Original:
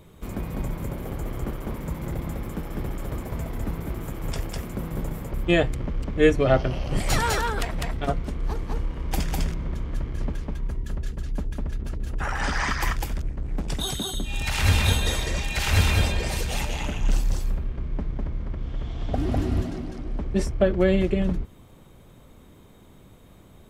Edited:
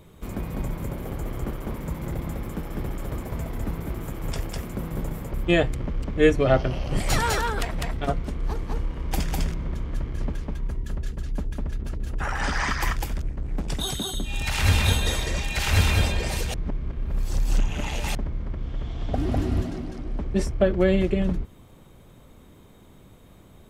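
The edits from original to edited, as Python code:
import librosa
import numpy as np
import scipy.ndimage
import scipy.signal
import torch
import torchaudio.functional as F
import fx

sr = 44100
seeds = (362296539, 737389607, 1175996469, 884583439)

y = fx.edit(x, sr, fx.reverse_span(start_s=16.54, length_s=1.61), tone=tone)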